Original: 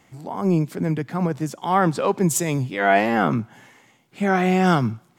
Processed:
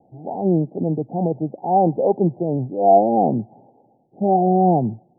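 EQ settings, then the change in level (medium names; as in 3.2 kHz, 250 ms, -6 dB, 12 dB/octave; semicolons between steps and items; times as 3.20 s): steep low-pass 820 Hz 96 dB/octave; tilt EQ +3 dB/octave; +7.5 dB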